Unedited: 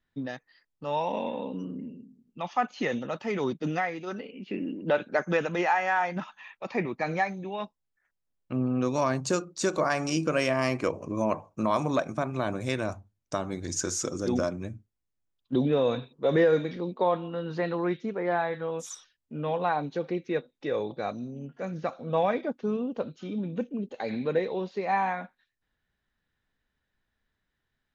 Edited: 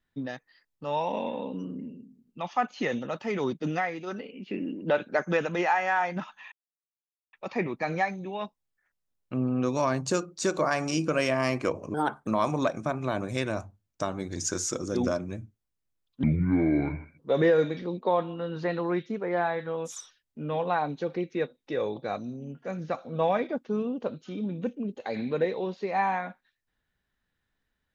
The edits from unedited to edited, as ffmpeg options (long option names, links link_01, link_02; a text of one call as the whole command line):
ffmpeg -i in.wav -filter_complex "[0:a]asplit=6[link_01][link_02][link_03][link_04][link_05][link_06];[link_01]atrim=end=6.52,asetpts=PTS-STARTPTS,afade=type=out:start_time=6.516:duration=0.004:curve=hsin,apad=pad_dur=0.81[link_07];[link_02]atrim=start=6.52:end=11.134,asetpts=PTS-STARTPTS,afade=type=in:duration=0.004:curve=hsin[link_08];[link_03]atrim=start=11.13:end=11.59,asetpts=PTS-STARTPTS,asetrate=61299,aresample=44100,atrim=end_sample=14594,asetpts=PTS-STARTPTS[link_09];[link_04]atrim=start=11.586:end=15.554[link_10];[link_05]atrim=start=15.55:end=16.14,asetpts=PTS-STARTPTS,asetrate=26901,aresample=44100,atrim=end_sample=42654,asetpts=PTS-STARTPTS[link_11];[link_06]atrim=start=16.136[link_12];[link_07][link_08]concat=n=2:v=0:a=1[link_13];[link_13][link_09]acrossfade=duration=0.004:curve1=hsin:curve2=hsin[link_14];[link_14][link_10]acrossfade=duration=0.004:curve1=hsin:curve2=hsin[link_15];[link_15][link_11]acrossfade=duration=0.004:curve1=hsin:curve2=hsin[link_16];[link_16][link_12]acrossfade=duration=0.004:curve1=hsin:curve2=hsin" out.wav